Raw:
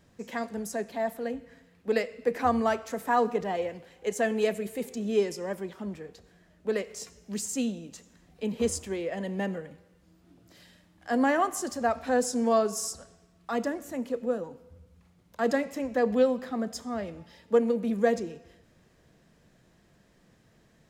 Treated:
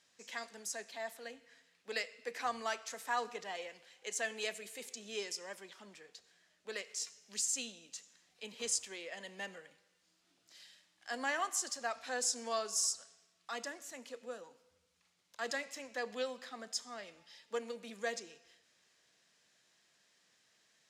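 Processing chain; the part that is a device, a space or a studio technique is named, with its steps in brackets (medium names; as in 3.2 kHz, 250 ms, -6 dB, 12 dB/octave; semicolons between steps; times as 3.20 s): piezo pickup straight into a mixer (low-pass 5.7 kHz 12 dB/octave; differentiator); trim +7 dB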